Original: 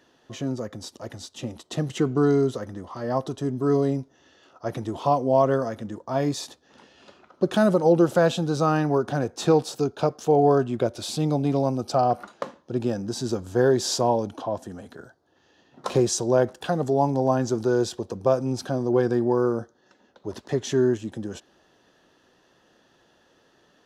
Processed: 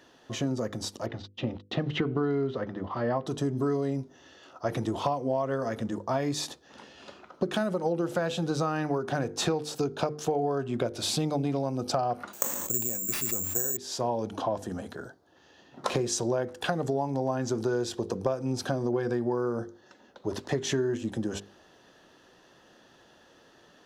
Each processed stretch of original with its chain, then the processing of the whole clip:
0:01.06–0:03.26: low-pass filter 3,800 Hz 24 dB per octave + noise gate −45 dBFS, range −44 dB
0:12.33–0:13.77: bad sample-rate conversion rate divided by 6×, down none, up zero stuff + level that may fall only so fast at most 52 dB per second
whole clip: mains-hum notches 50/100/150/200/250/300/350/400/450/500 Hz; dynamic equaliser 2,100 Hz, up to +5 dB, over −43 dBFS, Q 1.5; downward compressor 10 to 1, threshold −28 dBFS; level +3.5 dB

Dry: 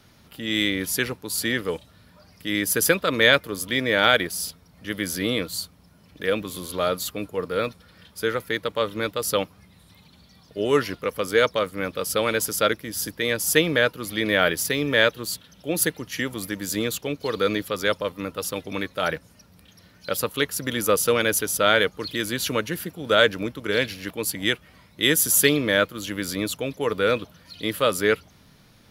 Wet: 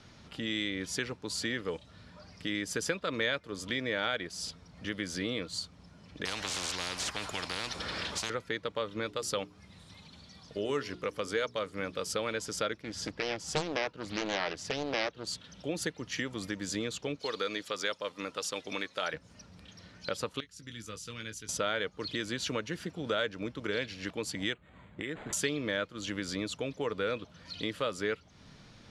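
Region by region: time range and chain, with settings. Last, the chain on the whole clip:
0:06.25–0:08.30: log-companded quantiser 8 bits + every bin compressed towards the loudest bin 10 to 1
0:09.06–0:12.16: high-shelf EQ 7,900 Hz +8 dB + mains-hum notches 60/120/180/240/300/360/420 Hz
0:12.82–0:15.27: high-shelf EQ 7,800 Hz −12 dB + highs frequency-modulated by the lows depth 0.87 ms
0:17.19–0:19.14: high-pass filter 430 Hz 6 dB per octave + high-shelf EQ 3,600 Hz +7 dB
0:20.40–0:21.49: guitar amp tone stack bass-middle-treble 6-0-2 + double-tracking delay 18 ms −8 dB
0:24.53–0:25.33: downward compressor 2.5 to 1, threshold −32 dBFS + high-frequency loss of the air 92 metres + linearly interpolated sample-rate reduction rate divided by 8×
whole clip: low-pass filter 7,600 Hz 24 dB per octave; downward compressor 2.5 to 1, threshold −35 dBFS

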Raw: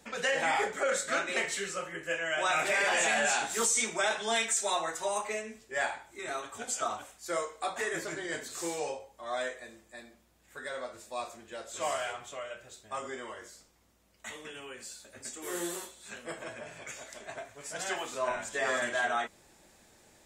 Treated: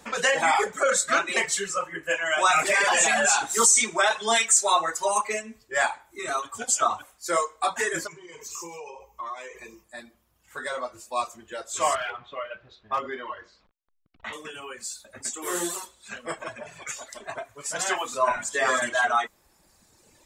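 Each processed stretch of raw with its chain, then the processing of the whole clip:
0:08.07–0:09.84: EQ curve with evenly spaced ripples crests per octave 0.77, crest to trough 13 dB + downward compressor 8 to 1, threshold −42 dBFS
0:11.95–0:14.33: hold until the input has moved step −56.5 dBFS + low-pass filter 4,000 Hz 24 dB per octave + hard clipping −30.5 dBFS
whole clip: parametric band 1,100 Hz +7 dB 0.61 octaves; reverb reduction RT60 1.8 s; dynamic equaliser 7,300 Hz, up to +5 dB, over −51 dBFS, Q 0.95; level +6.5 dB

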